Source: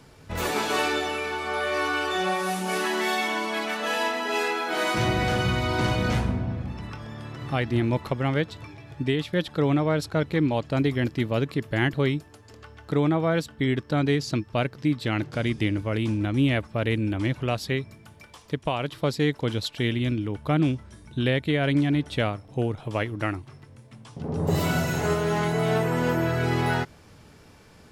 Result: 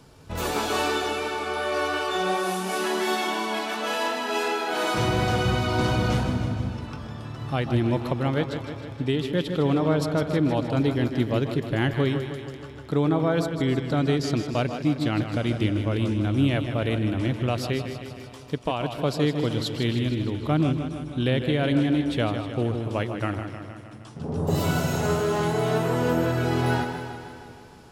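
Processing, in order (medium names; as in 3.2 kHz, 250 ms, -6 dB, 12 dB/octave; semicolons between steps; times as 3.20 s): peaking EQ 2 kHz -6 dB 0.53 oct; echo whose repeats swap between lows and highs 137 ms, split 1.7 kHz, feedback 59%, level -12 dB; modulated delay 156 ms, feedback 65%, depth 60 cents, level -9 dB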